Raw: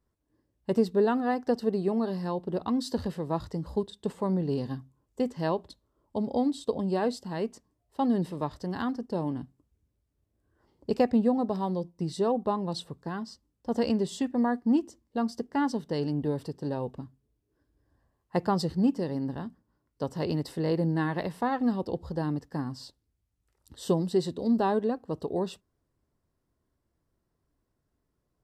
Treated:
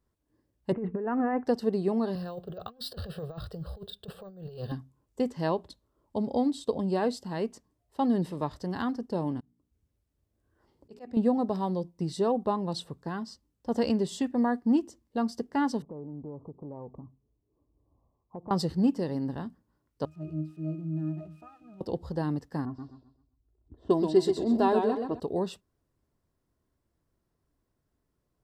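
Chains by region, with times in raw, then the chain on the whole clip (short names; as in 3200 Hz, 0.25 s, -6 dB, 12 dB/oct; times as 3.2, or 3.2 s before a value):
0.72–1.46 steep low-pass 2400 Hz 48 dB/oct + negative-ratio compressor -29 dBFS
2.15–4.72 negative-ratio compressor -33 dBFS, ratio -0.5 + fixed phaser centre 1400 Hz, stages 8 + careless resampling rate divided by 2×, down none, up hold
9.4–11.17 notches 60/120/180/240/300/360/420 Hz + auto swell 0.42 s
15.82–18.51 steep low-pass 1200 Hz 96 dB/oct + compressor 3:1, threshold -41 dBFS
20.05–21.81 switching spikes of -22.5 dBFS + octave resonator D#, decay 0.29 s
22.65–25.2 low-pass opened by the level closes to 440 Hz, open at -22.5 dBFS + comb 2.9 ms, depth 57% + warbling echo 0.13 s, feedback 31%, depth 86 cents, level -5.5 dB
whole clip: dry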